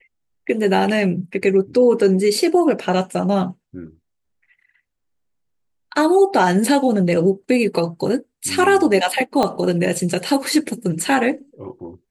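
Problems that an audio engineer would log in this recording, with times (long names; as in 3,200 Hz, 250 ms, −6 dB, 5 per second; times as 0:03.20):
0:09.43: click −7 dBFS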